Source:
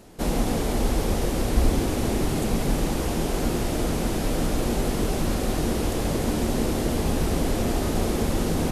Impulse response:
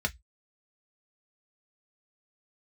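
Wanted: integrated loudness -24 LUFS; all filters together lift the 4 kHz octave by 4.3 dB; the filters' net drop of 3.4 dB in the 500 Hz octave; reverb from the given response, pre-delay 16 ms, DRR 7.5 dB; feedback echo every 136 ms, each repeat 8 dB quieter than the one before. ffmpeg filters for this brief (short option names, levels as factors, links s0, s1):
-filter_complex "[0:a]equalizer=f=500:t=o:g=-4.5,equalizer=f=4000:t=o:g=5.5,aecho=1:1:136|272|408|544|680:0.398|0.159|0.0637|0.0255|0.0102,asplit=2[s0][s1];[1:a]atrim=start_sample=2205,adelay=16[s2];[s1][s2]afir=irnorm=-1:irlink=0,volume=0.2[s3];[s0][s3]amix=inputs=2:normalize=0"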